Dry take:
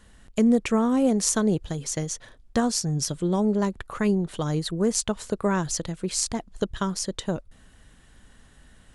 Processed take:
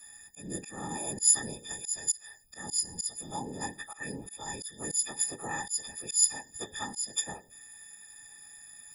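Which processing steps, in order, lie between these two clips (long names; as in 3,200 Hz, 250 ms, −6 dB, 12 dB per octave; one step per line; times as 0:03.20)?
every partial snapped to a pitch grid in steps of 6 semitones
high-shelf EQ 6,000 Hz +8 dB
tuned comb filter 220 Hz, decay 0.29 s, harmonics all, mix 50%
on a send at −17 dB: convolution reverb RT60 0.50 s, pre-delay 4 ms
on the sum: random phases in short frames
in parallel at +1 dB: downward compressor, threshold −29 dBFS, peak gain reduction 20.5 dB
on the sum: first-order pre-emphasis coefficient 0.8
volume swells 196 ms
hollow resonant body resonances 820/1,800 Hz, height 12 dB, ringing for 45 ms
level −6 dB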